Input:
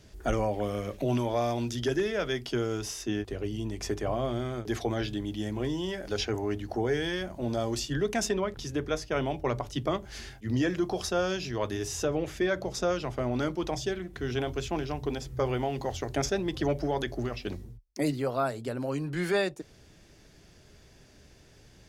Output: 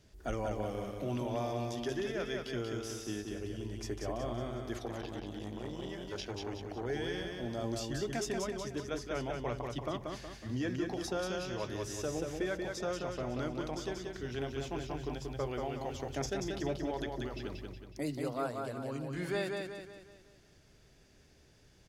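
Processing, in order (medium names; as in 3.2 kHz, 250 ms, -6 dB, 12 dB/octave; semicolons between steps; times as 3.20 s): feedback delay 184 ms, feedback 45%, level -4 dB; 4.85–6.86 s: transformer saturation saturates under 570 Hz; trim -8.5 dB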